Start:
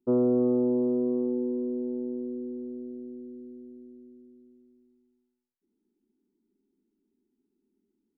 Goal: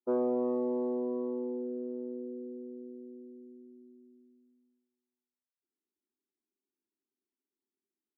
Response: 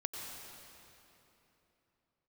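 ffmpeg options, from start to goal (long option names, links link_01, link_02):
-filter_complex "[0:a]equalizer=frequency=1200:width=0.65:gain=8.5[link_01];[1:a]atrim=start_sample=2205,atrim=end_sample=4410[link_02];[link_01][link_02]afir=irnorm=-1:irlink=0,asplit=2[link_03][link_04];[link_04]asoftclip=type=hard:threshold=-28dB,volume=-7.5dB[link_05];[link_03][link_05]amix=inputs=2:normalize=0,afftdn=noise_reduction=15:noise_floor=-39,highpass=330,volume=-4.5dB"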